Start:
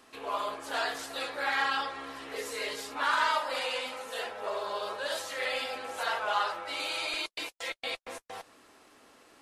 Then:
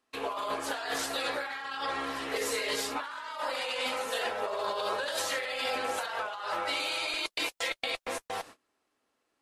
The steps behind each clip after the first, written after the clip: gate -53 dBFS, range -27 dB; negative-ratio compressor -37 dBFS, ratio -1; gain +3.5 dB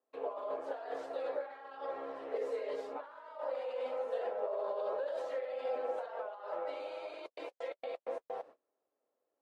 band-pass 540 Hz, Q 2.9; gain +1 dB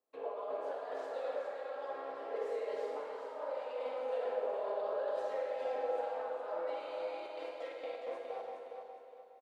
feedback echo 0.414 s, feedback 36%, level -7 dB; Schroeder reverb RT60 1.9 s, DRR 1 dB; gain -3 dB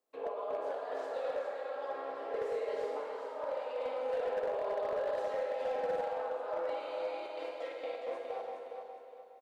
overloaded stage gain 31.5 dB; gain +2.5 dB

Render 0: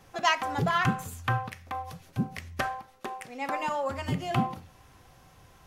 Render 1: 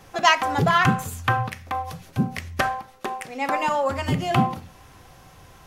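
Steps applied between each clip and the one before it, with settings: notches 60/120/180/240 Hz; gain +7.5 dB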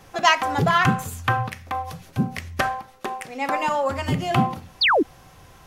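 painted sound fall, 4.81–5.03, 250–5100 Hz -17 dBFS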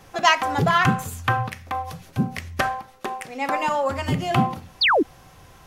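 nothing audible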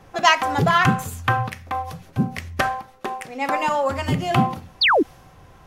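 mismatched tape noise reduction decoder only; gain +1.5 dB

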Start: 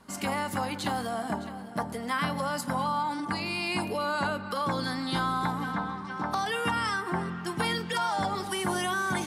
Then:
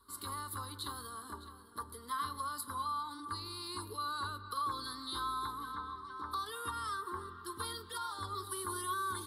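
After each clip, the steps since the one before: EQ curve 100 Hz 0 dB, 150 Hz -30 dB, 270 Hz -11 dB, 410 Hz -5 dB, 710 Hz -29 dB, 1100 Hz +3 dB, 2500 Hz -25 dB, 3900 Hz +4 dB, 6200 Hz -17 dB, 10000 Hz +5 dB; gain -5 dB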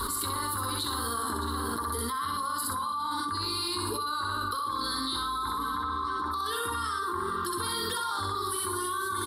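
loudspeakers at several distances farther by 22 m -2 dB, 41 m -9 dB; fast leveller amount 100%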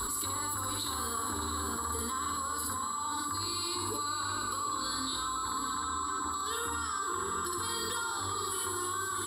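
whine 7800 Hz -32 dBFS; diffused feedback echo 0.676 s, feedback 40%, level -8 dB; gain -4.5 dB

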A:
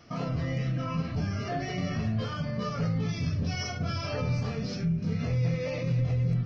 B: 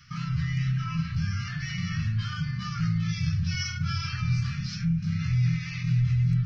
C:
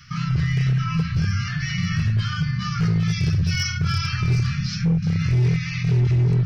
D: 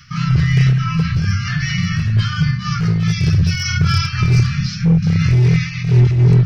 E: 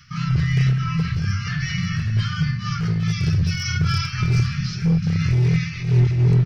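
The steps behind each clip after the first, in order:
elliptic band-stop 160–1400 Hz, stop band 80 dB; gain +4 dB
overloaded stage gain 22 dB; gain +7 dB
noise-modulated level, depth 65%; gain +9 dB
feedback echo 0.473 s, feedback 39%, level -14 dB; gain -5.5 dB

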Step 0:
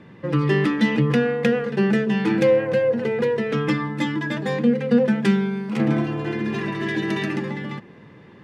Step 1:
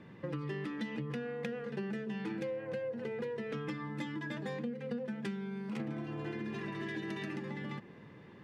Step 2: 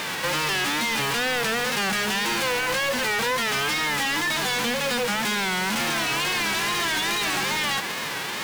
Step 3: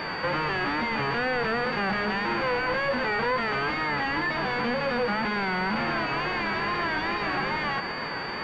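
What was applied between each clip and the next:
compressor 6:1, threshold -29 dBFS, peak gain reduction 16 dB; gain -7.5 dB
spectral whitening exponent 0.3; wow and flutter 110 cents; overdrive pedal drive 31 dB, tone 4800 Hz, clips at -22 dBFS; gain +5 dB
pulse-width modulation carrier 4600 Hz

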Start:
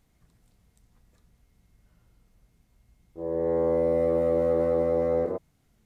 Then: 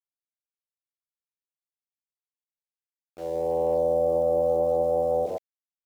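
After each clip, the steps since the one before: EQ curve 160 Hz 0 dB, 220 Hz -4 dB, 400 Hz -2 dB, 740 Hz +13 dB, 1900 Hz -29 dB; sample gate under -40 dBFS; gain -4 dB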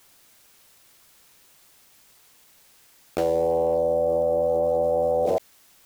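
fast leveller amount 100%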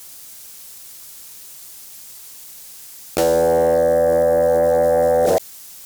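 tone controls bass +2 dB, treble +11 dB; sine folder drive 3 dB, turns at -10.5 dBFS; gain +1 dB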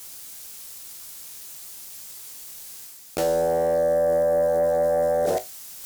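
reverse; upward compressor, threshold -25 dBFS; reverse; resonator 53 Hz, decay 0.19 s, harmonics all, mix 80%; gain -3 dB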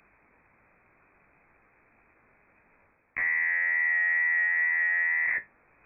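wow and flutter 60 cents; inverted band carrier 2500 Hz; gain -5 dB

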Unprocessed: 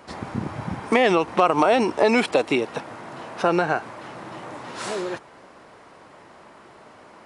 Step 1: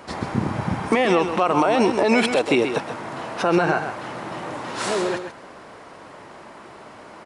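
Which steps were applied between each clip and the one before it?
limiter -14 dBFS, peak gain reduction 11 dB; on a send: echo 0.132 s -8.5 dB; on the sum: gain +5 dB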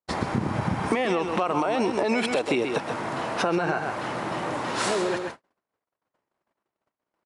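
gate -36 dBFS, range -56 dB; compressor 4:1, threshold -24 dBFS, peak gain reduction 9.5 dB; gain +2 dB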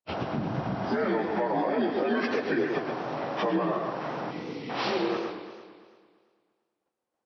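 inharmonic rescaling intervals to 83%; spectral gain 4.31–4.7, 510–1900 Hz -28 dB; warbling echo 0.113 s, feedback 66%, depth 195 cents, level -10 dB; gain -1.5 dB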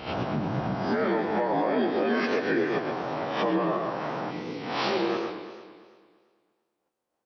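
spectral swells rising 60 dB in 0.49 s

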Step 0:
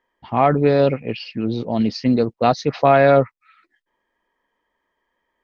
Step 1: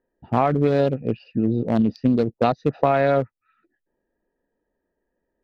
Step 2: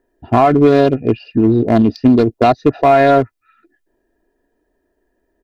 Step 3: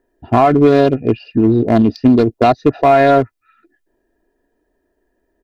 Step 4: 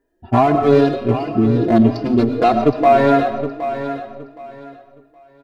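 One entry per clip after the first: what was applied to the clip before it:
Wiener smoothing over 41 samples; compressor 5:1, threshold -20 dBFS, peak gain reduction 10.5 dB; gain +4.5 dB
comb 2.9 ms, depth 57%; in parallel at -4 dB: hard clip -16 dBFS, distortion -11 dB; on the sum: maximiser +6 dB; gain -1 dB
nothing audible
feedback echo 0.768 s, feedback 24%, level -11 dB; reverb RT60 1.1 s, pre-delay 65 ms, DRR 8 dB; endless flanger 4.6 ms +2.6 Hz

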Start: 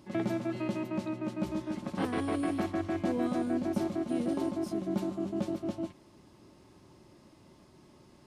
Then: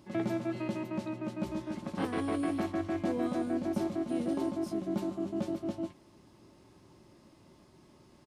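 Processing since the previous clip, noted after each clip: doubler 18 ms -14 dB; gain -1.5 dB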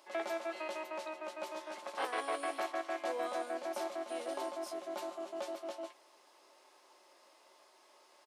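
HPF 540 Hz 24 dB/oct; gain +2.5 dB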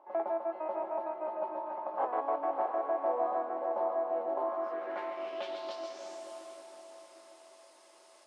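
diffused feedback echo 0.629 s, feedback 44%, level -5 dB; low-pass sweep 870 Hz -> 9200 Hz, 4.36–6.32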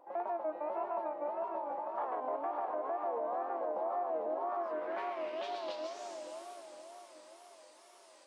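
limiter -28 dBFS, peak gain reduction 8 dB; wow and flutter 130 cents

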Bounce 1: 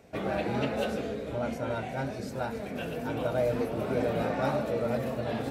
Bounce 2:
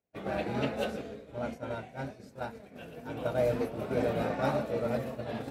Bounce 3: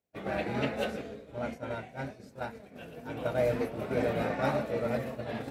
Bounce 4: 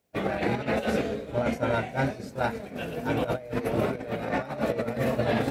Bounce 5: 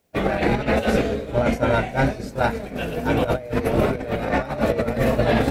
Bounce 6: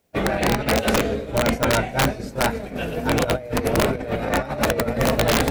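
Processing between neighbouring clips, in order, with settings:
expander -26 dBFS
dynamic EQ 2000 Hz, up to +5 dB, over -54 dBFS, Q 2.3
negative-ratio compressor -35 dBFS, ratio -0.5; gain +8.5 dB
octaver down 2 oct, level -6 dB; gain +6.5 dB
wrapped overs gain 10.5 dB

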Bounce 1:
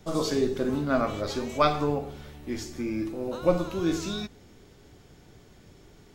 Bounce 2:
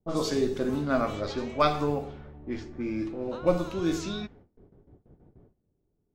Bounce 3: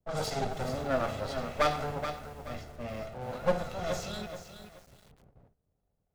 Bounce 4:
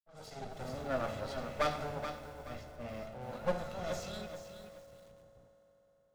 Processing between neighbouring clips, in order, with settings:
gate with hold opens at -42 dBFS; low-pass opened by the level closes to 540 Hz, open at -23 dBFS; gain -1 dB
minimum comb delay 1.5 ms; lo-fi delay 0.427 s, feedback 35%, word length 8-bit, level -9 dB; gain -2 dB
opening faded in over 0.92 s; reverb RT60 4.6 s, pre-delay 3 ms, DRR 11 dB; gain -5.5 dB

